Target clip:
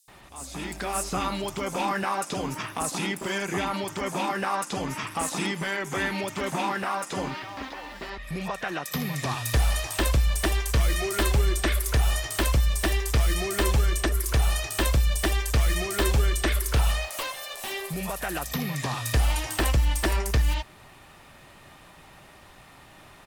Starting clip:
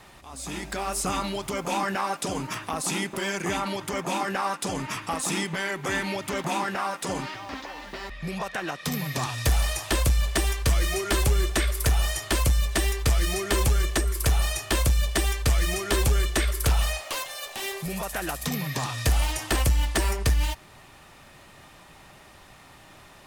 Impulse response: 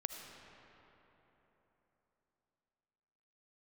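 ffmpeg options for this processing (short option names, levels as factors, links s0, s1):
-filter_complex "[0:a]acrossover=split=6000[s0][s1];[s0]adelay=80[s2];[s2][s1]amix=inputs=2:normalize=0"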